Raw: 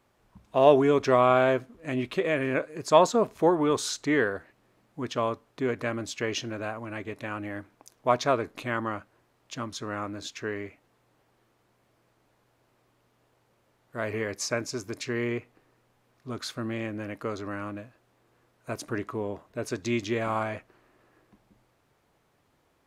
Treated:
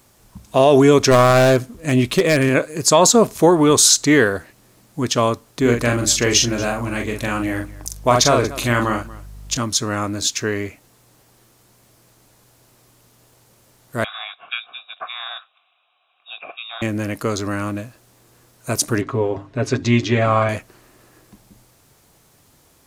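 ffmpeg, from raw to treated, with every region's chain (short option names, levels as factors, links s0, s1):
-filter_complex "[0:a]asettb=1/sr,asplit=3[s0][s1][s2];[s0]atrim=end=1.114[s3];[s1]atrim=start=1.11:end=2.49,asetpts=PTS-STARTPTS,afade=t=in:d=0.004:c=qsin,afade=t=out:st=1.376:d=0.004:c=qsin,equalizer=f=64:w=0.45:g=4,aeval=exprs='clip(val(0),-1,0.126)':c=same[s4];[s2]atrim=start=2.486[s5];[s3][s4]acrossfade=d=0.004:c1=hsin:c2=qsin[s6];[s6][s5]acrossfade=d=0.004:c1=qsin:c2=hsin,asettb=1/sr,asplit=3[s7][s8][s9];[s7]atrim=end=5.614[s10];[s8]atrim=start=5.61:end=9.57,asetpts=PTS-STARTPTS,afade=t=in:d=0.004:c=qsin,afade=t=out:st=3.956:d=0.004:c=qsin,aeval=exprs='val(0)+0.00224*(sin(2*PI*50*n/s)+sin(2*PI*2*50*n/s)/2+sin(2*PI*3*50*n/s)/3+sin(2*PI*4*50*n/s)/4+sin(2*PI*5*50*n/s)/5)':c=same,aecho=1:1:42|235:0.596|0.106,atrim=end_sample=174636[s11];[s9]atrim=start=9.566[s12];[s10][s11]acrossfade=d=0.004:c1=hsin:c2=qsin[s13];[s13][s12]acrossfade=d=0.004:c1=qsin:c2=hsin,asettb=1/sr,asplit=3[s14][s15][s16];[s14]atrim=end=14.044[s17];[s15]atrim=start=14.04:end=16.82,asetpts=PTS-STARTPTS,afade=t=in:d=0.004:c=qsin,afade=t=out:st=2.776:d=0.004:c=qsin,equalizer=f=2700:t=o:w=1.6:g=14.5,lowpass=f=3300:t=q:w=0.5098,lowpass=f=3300:t=q:w=0.6013,lowpass=f=3300:t=q:w=0.9,lowpass=f=3300:t=q:w=2.563,afreqshift=-3900,asplit=3[s18][s19][s20];[s18]bandpass=f=730:t=q:w=8,volume=1[s21];[s19]bandpass=f=1090:t=q:w=8,volume=0.501[s22];[s20]bandpass=f=2440:t=q:w=8,volume=0.355[s23];[s21][s22][s23]amix=inputs=3:normalize=0[s24];[s16]atrim=start=16.816[s25];[s17][s24]acrossfade=d=0.004:c1=hsin:c2=qsin[s26];[s26][s25]acrossfade=d=0.004:c1=qsin:c2=hsin,asettb=1/sr,asplit=3[s27][s28][s29];[s27]atrim=end=19.014[s30];[s28]atrim=start=19.01:end=20.49,asetpts=PTS-STARTPTS,afade=t=in:d=0.004:c=qsin,afade=t=out:st=1.476:d=0.004:c=qsin,lowpass=2900,bandreject=f=50:t=h:w=6,bandreject=f=100:t=h:w=6,bandreject=f=150:t=h:w=6,bandreject=f=200:t=h:w=6,bandreject=f=250:t=h:w=6,bandreject=f=300:t=h:w=6,bandreject=f=350:t=h:w=6,aecho=1:1:7.4:0.67,atrim=end_sample=65268[s31];[s29]atrim=start=20.486[s32];[s30][s31]acrossfade=d=0.004:c1=hsin:c2=qsin[s33];[s33][s32]acrossfade=d=0.004:c1=qsin:c2=hsin,bass=f=250:g=5,treble=f=4000:g=15,alimiter=level_in=3.35:limit=0.891:release=50:level=0:latency=1,volume=0.891"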